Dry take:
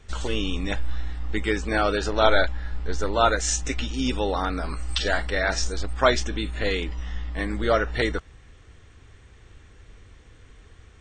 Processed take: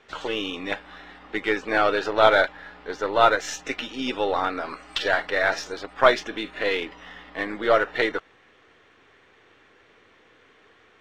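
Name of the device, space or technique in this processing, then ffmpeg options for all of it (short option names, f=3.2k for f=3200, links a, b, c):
crystal radio: -af "highpass=360,lowpass=3.3k,aeval=exprs='if(lt(val(0),0),0.708*val(0),val(0))':c=same,volume=4.5dB"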